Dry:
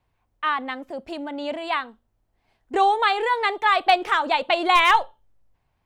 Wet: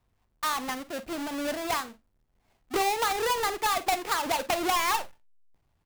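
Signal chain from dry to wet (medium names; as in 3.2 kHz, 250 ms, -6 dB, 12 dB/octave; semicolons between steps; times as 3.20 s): square wave that keeps the level; compression 4:1, threshold -19 dBFS, peak gain reduction 8 dB; on a send: early reflections 43 ms -16 dB, 56 ms -17.5 dB; on the sum: trim -6 dB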